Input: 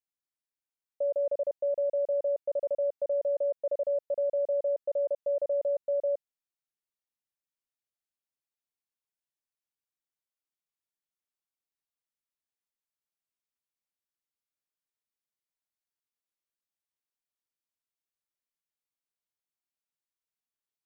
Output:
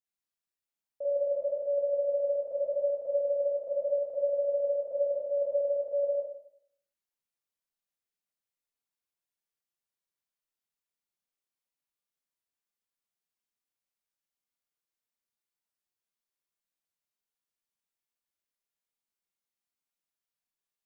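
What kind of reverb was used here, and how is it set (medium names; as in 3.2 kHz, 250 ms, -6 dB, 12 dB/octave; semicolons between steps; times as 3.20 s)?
Schroeder reverb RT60 0.67 s, combs from 32 ms, DRR -6.5 dB; trim -7 dB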